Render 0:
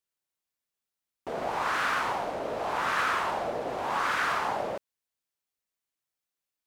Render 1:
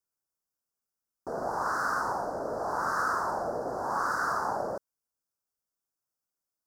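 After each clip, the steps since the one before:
elliptic band-stop filter 1,500–5,000 Hz, stop band 60 dB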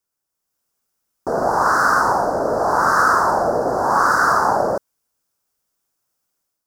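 automatic gain control gain up to 7 dB
level +7 dB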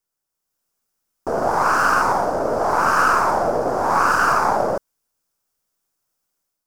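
gain on one half-wave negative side −3 dB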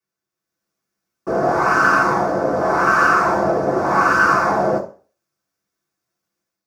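convolution reverb RT60 0.40 s, pre-delay 3 ms, DRR −5 dB
level −12 dB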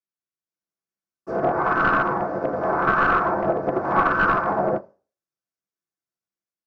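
wavefolder on the positive side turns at −10.5 dBFS
treble cut that deepens with the level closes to 1,600 Hz, closed at −13.5 dBFS
expander for the loud parts 2.5 to 1, over −26 dBFS

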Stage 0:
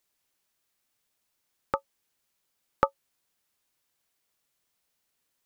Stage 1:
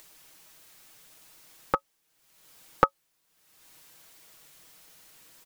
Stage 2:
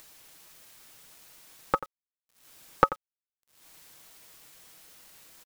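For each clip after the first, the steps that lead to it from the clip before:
comb filter 6.3 ms, depth 54%; upward compression, threshold −42 dBFS; level +3 dB
single-tap delay 88 ms −15 dB; bit reduction 9 bits

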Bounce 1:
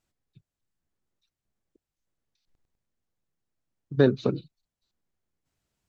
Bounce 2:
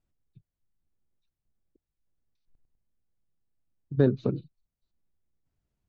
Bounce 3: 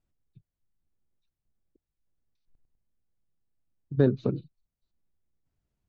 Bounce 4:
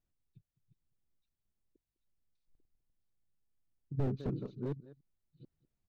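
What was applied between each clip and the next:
spectral tilt −2.5 dB per octave; level −6.5 dB
no processing that can be heard
delay that plays each chunk backwards 545 ms, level −9 dB; single-tap delay 204 ms −20.5 dB; slew-rate limiting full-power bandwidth 15 Hz; level −5.5 dB

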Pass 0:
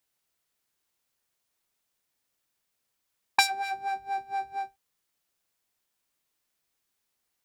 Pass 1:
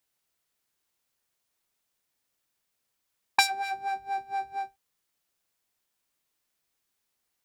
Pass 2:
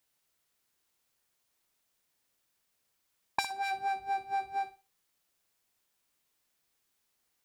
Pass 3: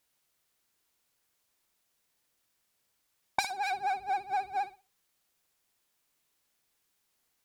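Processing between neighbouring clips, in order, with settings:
no processing that can be heard
downward compressor 8 to 1, threshold −30 dBFS, peak gain reduction 14.5 dB; flutter between parallel walls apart 10.2 metres, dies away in 0.29 s; level +1.5 dB
pitch vibrato 15 Hz 88 cents; level +1.5 dB

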